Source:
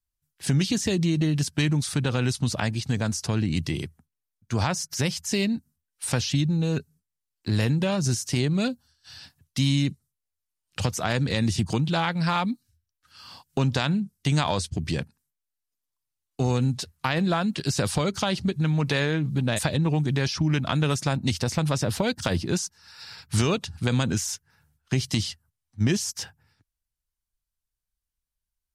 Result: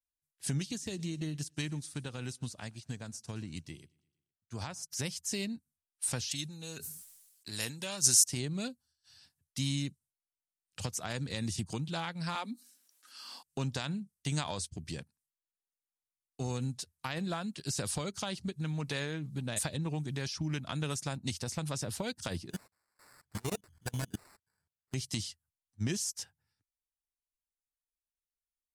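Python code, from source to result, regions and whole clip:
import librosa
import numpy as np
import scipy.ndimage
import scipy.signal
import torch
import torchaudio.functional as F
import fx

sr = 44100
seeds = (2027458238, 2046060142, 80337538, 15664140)

y = fx.chain(x, sr, fx.echo_feedback(ms=116, feedback_pct=58, wet_db=-22.0),
    fx.upward_expand(threshold_db=-37.0, expansion=1.5), at=(0.54, 4.83))
y = fx.chain(y, sr, fx.tilt_eq(slope=3.0),
    fx.sustainer(db_per_s=43.0), at=(6.31, 8.24))
y = fx.chain(y, sr, fx.steep_highpass(hz=210.0, slope=72),
    fx.env_flatten(amount_pct=50), at=(12.35, 13.43))
y = fx.chain(y, sr, fx.ripple_eq(per_octave=1.7, db=9),
    fx.level_steps(step_db=22),
    fx.sample_hold(seeds[0], rate_hz=3200.0, jitter_pct=0), at=(22.5, 24.94))
y = fx.peak_eq(y, sr, hz=9200.0, db=10.0, octaves=1.5)
y = fx.upward_expand(y, sr, threshold_db=-36.0, expansion=1.5)
y = y * 10.0 ** (-7.5 / 20.0)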